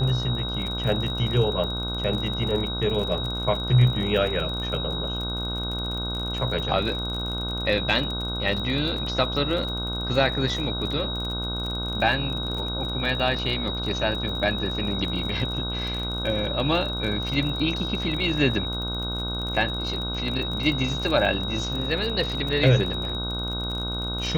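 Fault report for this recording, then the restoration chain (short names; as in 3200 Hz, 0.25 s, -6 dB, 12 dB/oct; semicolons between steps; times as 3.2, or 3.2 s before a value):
buzz 60 Hz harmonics 26 -31 dBFS
crackle 39/s -30 dBFS
tone 3800 Hz -30 dBFS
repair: de-click; de-hum 60 Hz, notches 26; notch 3800 Hz, Q 30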